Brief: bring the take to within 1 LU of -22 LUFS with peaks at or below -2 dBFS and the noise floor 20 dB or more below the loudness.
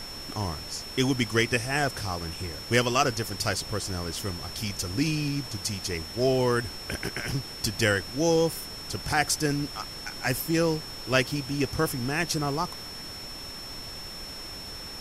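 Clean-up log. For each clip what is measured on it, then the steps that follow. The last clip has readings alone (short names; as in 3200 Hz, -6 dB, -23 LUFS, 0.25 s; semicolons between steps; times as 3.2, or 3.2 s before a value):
steady tone 5400 Hz; tone level -39 dBFS; noise floor -40 dBFS; noise floor target -49 dBFS; loudness -28.5 LUFS; peak -10.0 dBFS; loudness target -22.0 LUFS
-> notch 5400 Hz, Q 30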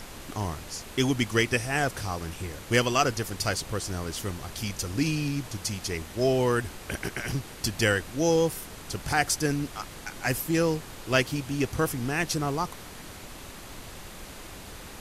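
steady tone none; noise floor -44 dBFS; noise floor target -48 dBFS
-> noise print and reduce 6 dB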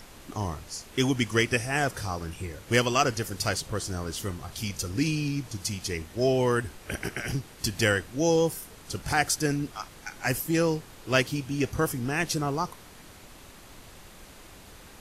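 noise floor -49 dBFS; loudness -28.0 LUFS; peak -10.5 dBFS; loudness target -22.0 LUFS
-> gain +6 dB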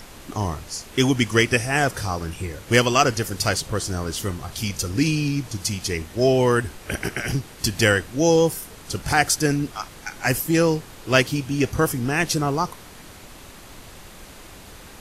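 loudness -22.0 LUFS; peak -4.5 dBFS; noise floor -43 dBFS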